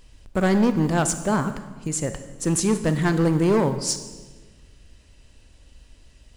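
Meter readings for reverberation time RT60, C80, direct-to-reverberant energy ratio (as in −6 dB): 1.3 s, 13.0 dB, 10.0 dB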